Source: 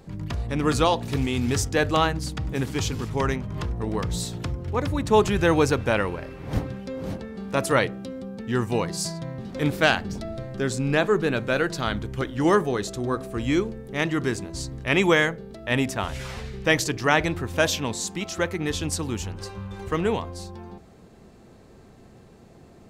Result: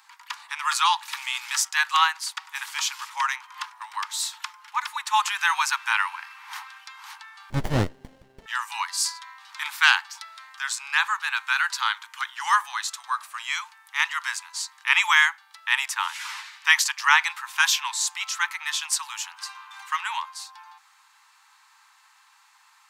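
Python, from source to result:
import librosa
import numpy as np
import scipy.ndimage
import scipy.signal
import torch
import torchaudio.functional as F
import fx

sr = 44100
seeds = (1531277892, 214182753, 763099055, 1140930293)

y = scipy.signal.sosfilt(scipy.signal.butter(16, 870.0, 'highpass', fs=sr, output='sos'), x)
y = fx.running_max(y, sr, window=33, at=(7.5, 8.46))
y = F.gain(torch.from_numpy(y), 5.0).numpy()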